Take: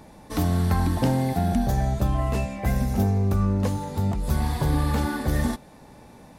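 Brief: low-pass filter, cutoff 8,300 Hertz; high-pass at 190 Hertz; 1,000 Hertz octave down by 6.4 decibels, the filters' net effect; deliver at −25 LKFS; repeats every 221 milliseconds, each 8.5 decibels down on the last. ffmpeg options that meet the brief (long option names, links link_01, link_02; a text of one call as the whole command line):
ffmpeg -i in.wav -af "highpass=190,lowpass=8300,equalizer=frequency=1000:width_type=o:gain=-9,aecho=1:1:221|442|663|884:0.376|0.143|0.0543|0.0206,volume=4.5dB" out.wav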